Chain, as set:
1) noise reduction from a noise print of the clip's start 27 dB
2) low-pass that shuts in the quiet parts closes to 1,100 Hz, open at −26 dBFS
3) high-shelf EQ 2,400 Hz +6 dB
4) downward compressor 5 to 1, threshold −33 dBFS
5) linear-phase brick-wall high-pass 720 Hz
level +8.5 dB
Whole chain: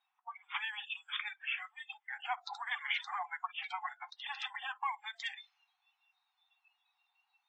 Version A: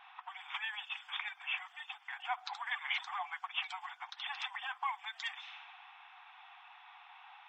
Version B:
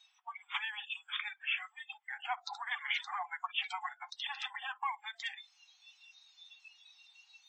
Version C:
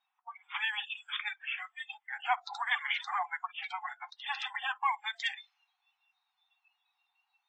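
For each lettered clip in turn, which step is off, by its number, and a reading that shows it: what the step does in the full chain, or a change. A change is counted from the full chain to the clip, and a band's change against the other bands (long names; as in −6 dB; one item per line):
1, 8 kHz band +1.5 dB
2, 8 kHz band +3.5 dB
4, average gain reduction 3.5 dB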